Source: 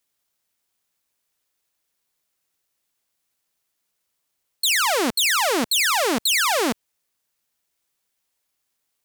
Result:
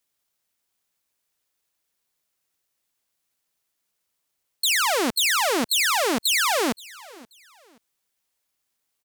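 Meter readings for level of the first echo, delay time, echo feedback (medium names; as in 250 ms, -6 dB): -22.0 dB, 528 ms, 30%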